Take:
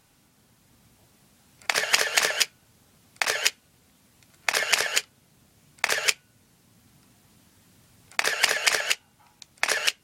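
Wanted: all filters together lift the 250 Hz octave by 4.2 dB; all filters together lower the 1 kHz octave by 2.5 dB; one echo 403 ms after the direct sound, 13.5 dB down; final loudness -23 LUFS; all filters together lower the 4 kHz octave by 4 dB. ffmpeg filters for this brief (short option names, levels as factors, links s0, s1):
-af "equalizer=f=250:t=o:g=6,equalizer=f=1000:t=o:g=-3.5,equalizer=f=4000:t=o:g=-5.5,aecho=1:1:403:0.211,volume=1.58"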